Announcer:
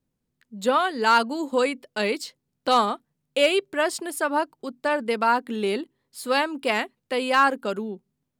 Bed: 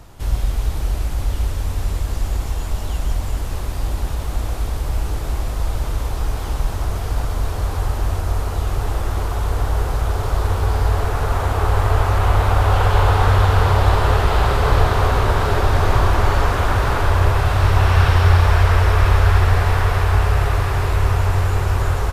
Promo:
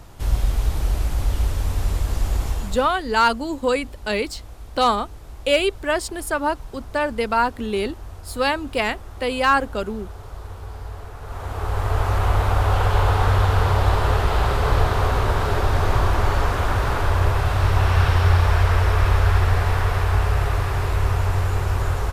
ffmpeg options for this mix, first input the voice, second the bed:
ffmpeg -i stem1.wav -i stem2.wav -filter_complex "[0:a]adelay=2100,volume=1.5dB[link_01];[1:a]volume=12.5dB,afade=type=out:start_time=2.48:duration=0.46:silence=0.158489,afade=type=in:start_time=11.21:duration=0.91:silence=0.223872[link_02];[link_01][link_02]amix=inputs=2:normalize=0" out.wav

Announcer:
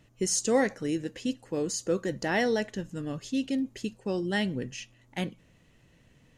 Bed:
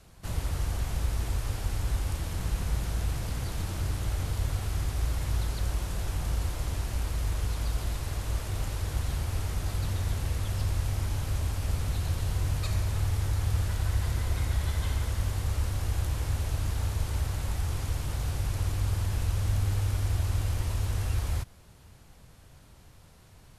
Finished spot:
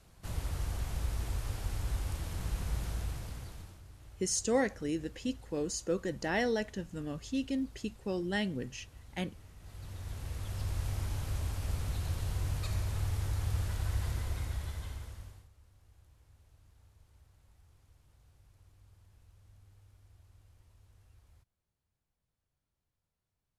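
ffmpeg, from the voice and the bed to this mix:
ffmpeg -i stem1.wav -i stem2.wav -filter_complex "[0:a]adelay=4000,volume=-4.5dB[link_01];[1:a]volume=12dB,afade=type=out:start_time=2.87:duration=0.94:silence=0.133352,afade=type=in:start_time=9.58:duration=1.3:silence=0.133352,afade=type=out:start_time=14.07:duration=1.42:silence=0.0421697[link_02];[link_01][link_02]amix=inputs=2:normalize=0" out.wav

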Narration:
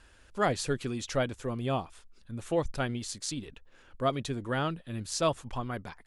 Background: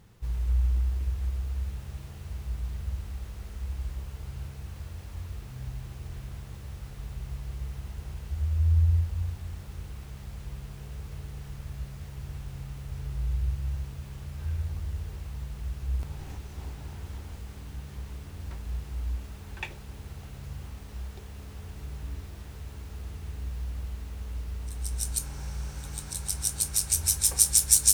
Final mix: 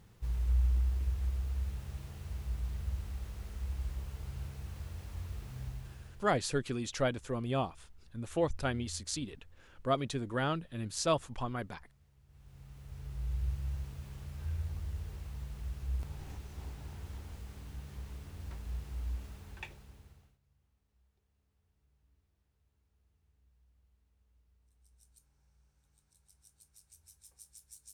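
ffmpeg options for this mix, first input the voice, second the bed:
ffmpeg -i stem1.wav -i stem2.wav -filter_complex "[0:a]adelay=5850,volume=-2dB[link_01];[1:a]volume=17dB,afade=type=out:start_time=5.59:duration=0.75:silence=0.0749894,afade=type=in:start_time=12.27:duration=1.2:silence=0.0944061,afade=type=out:start_time=19.25:duration=1.13:silence=0.0334965[link_02];[link_01][link_02]amix=inputs=2:normalize=0" out.wav

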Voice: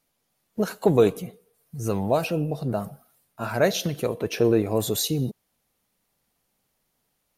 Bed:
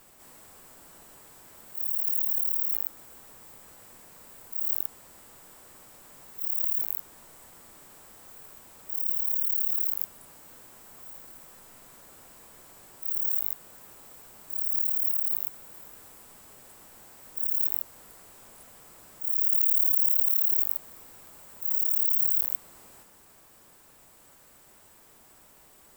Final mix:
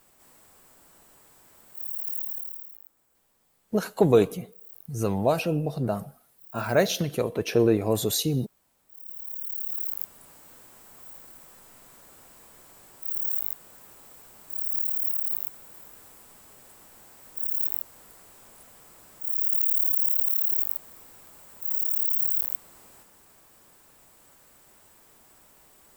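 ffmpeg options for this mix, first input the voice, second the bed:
ffmpeg -i stem1.wav -i stem2.wav -filter_complex "[0:a]adelay=3150,volume=-0.5dB[link_01];[1:a]volume=14.5dB,afade=type=out:start_time=2.19:duration=0.54:silence=0.177828,afade=type=in:start_time=8.89:duration=1.39:silence=0.112202[link_02];[link_01][link_02]amix=inputs=2:normalize=0" out.wav

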